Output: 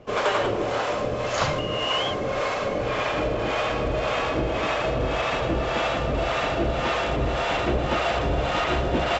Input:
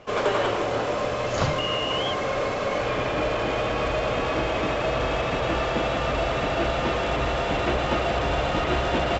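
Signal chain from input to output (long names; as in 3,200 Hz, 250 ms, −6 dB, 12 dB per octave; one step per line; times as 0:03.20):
two-band tremolo in antiphase 1.8 Hz, depth 70%, crossover 570 Hz
level +3.5 dB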